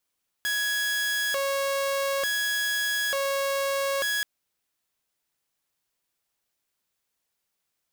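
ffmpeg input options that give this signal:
-f lavfi -i "aevalsrc='0.0794*(2*mod((1110.5*t+559.5/0.56*(0.5-abs(mod(0.56*t,1)-0.5))),1)-1)':d=3.78:s=44100"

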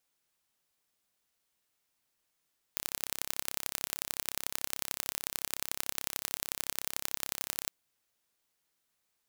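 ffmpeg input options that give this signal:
-f lavfi -i "aevalsrc='0.631*eq(mod(n,1312),0)*(0.5+0.5*eq(mod(n,3936),0))':d=4.93:s=44100"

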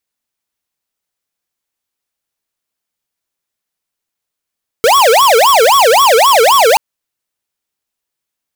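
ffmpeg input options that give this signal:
-f lavfi -i "aevalsrc='0.422*(2*lt(mod((784.5*t-345.5/(2*PI*3.8)*sin(2*PI*3.8*t)),1),0.5)-1)':d=1.93:s=44100"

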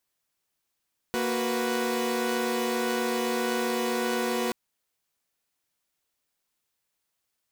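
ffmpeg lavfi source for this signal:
-f lavfi -i "aevalsrc='0.0422*((2*mod(233.08*t,1)-1)+(2*mod(369.99*t,1)-1)+(2*mod(493.88*t,1)-1))':d=3.38:s=44100"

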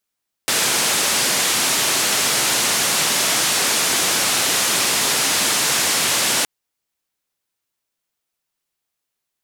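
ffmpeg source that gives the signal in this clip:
-f lavfi -i "anoisesrc=c=white:d=5.97:r=44100:seed=1,highpass=f=140,lowpass=f=9500,volume=-10.1dB"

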